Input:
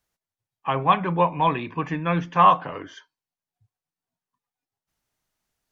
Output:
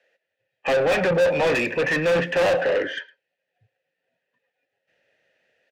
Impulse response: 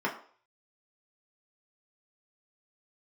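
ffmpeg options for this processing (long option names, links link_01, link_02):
-filter_complex "[0:a]acrossover=split=160|520|1900[link_01][link_02][link_03][link_04];[link_01]dynaudnorm=framelen=160:gausssize=3:maxgain=16dB[link_05];[link_05][link_02][link_03][link_04]amix=inputs=4:normalize=0,asplit=3[link_06][link_07][link_08];[link_06]bandpass=frequency=530:width_type=q:width=8,volume=0dB[link_09];[link_07]bandpass=frequency=1840:width_type=q:width=8,volume=-6dB[link_10];[link_08]bandpass=frequency=2480:width_type=q:width=8,volume=-9dB[link_11];[link_09][link_10][link_11]amix=inputs=3:normalize=0,asplit=2[link_12][link_13];[link_13]highpass=frequency=720:poles=1,volume=35dB,asoftclip=type=tanh:threshold=-15dB[link_14];[link_12][link_14]amix=inputs=2:normalize=0,lowpass=frequency=2500:poles=1,volume=-6dB,asplit=2[link_15][link_16];[link_16]adelay=110,highpass=300,lowpass=3400,asoftclip=type=hard:threshold=-25dB,volume=-21dB[link_17];[link_15][link_17]amix=inputs=2:normalize=0,volume=3dB"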